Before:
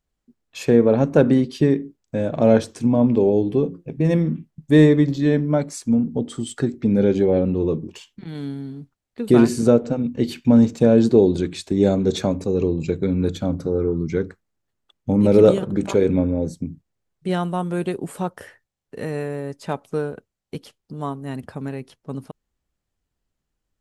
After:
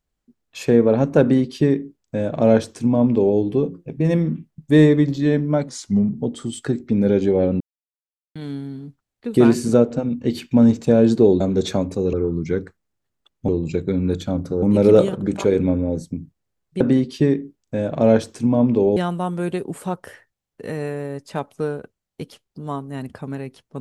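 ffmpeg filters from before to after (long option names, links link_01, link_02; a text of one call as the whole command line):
ffmpeg -i in.wav -filter_complex "[0:a]asplit=11[link_01][link_02][link_03][link_04][link_05][link_06][link_07][link_08][link_09][link_10][link_11];[link_01]atrim=end=5.684[link_12];[link_02]atrim=start=5.68:end=6.11,asetpts=PTS-STARTPTS,asetrate=38367,aresample=44100[link_13];[link_03]atrim=start=6.106:end=7.54,asetpts=PTS-STARTPTS,afade=type=out:start_time=1.43:duration=0.004:curve=hsin[link_14];[link_04]atrim=start=7.54:end=8.29,asetpts=PTS-STARTPTS,volume=0[link_15];[link_05]atrim=start=8.29:end=11.342,asetpts=PTS-STARTPTS,afade=type=in:duration=0.004:curve=hsin[link_16];[link_06]atrim=start=11.898:end=12.632[link_17];[link_07]atrim=start=13.768:end=15.122[link_18];[link_08]atrim=start=12.628:end=13.772[link_19];[link_09]atrim=start=15.118:end=17.302[link_20];[link_10]atrim=start=1.208:end=3.372[link_21];[link_11]atrim=start=17.298[link_22];[link_12][link_13]acrossfade=duration=0.004:curve1=hsin:curve2=hsin[link_23];[link_14][link_15][link_16]concat=n=3:v=0:a=1[link_24];[link_23][link_24]acrossfade=duration=0.004:curve1=hsin:curve2=hsin[link_25];[link_25][link_17]acrossfade=duration=0.004:curve1=hsin:curve2=hsin[link_26];[link_26][link_18]acrossfade=duration=0.004:curve1=hsin:curve2=hsin[link_27];[link_27][link_19]acrossfade=duration=0.004:curve1=hsin:curve2=hsin[link_28];[link_28][link_20]acrossfade=duration=0.004:curve1=hsin:curve2=hsin[link_29];[link_29][link_21]acrossfade=duration=0.004:curve1=hsin:curve2=hsin[link_30];[link_30][link_22]acrossfade=duration=0.004:curve1=hsin:curve2=hsin" out.wav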